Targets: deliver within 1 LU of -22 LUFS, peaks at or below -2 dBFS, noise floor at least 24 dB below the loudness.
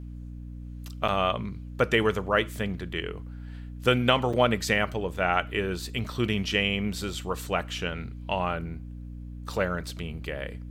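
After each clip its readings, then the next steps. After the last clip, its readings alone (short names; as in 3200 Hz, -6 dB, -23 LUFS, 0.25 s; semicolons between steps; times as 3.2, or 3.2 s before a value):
dropouts 2; longest dropout 5.4 ms; hum 60 Hz; harmonics up to 300 Hz; hum level -36 dBFS; loudness -28.0 LUFS; peak -6.5 dBFS; loudness target -22.0 LUFS
-> interpolate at 1.08/4.33, 5.4 ms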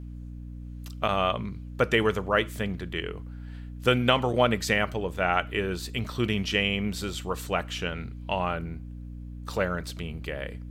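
dropouts 0; hum 60 Hz; harmonics up to 300 Hz; hum level -36 dBFS
-> de-hum 60 Hz, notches 5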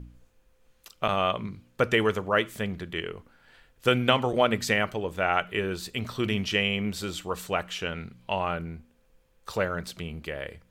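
hum none; loudness -28.0 LUFS; peak -5.5 dBFS; loudness target -22.0 LUFS
-> gain +6 dB; limiter -2 dBFS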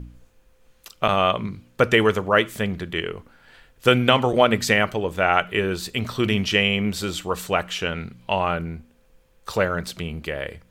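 loudness -22.0 LUFS; peak -2.0 dBFS; noise floor -59 dBFS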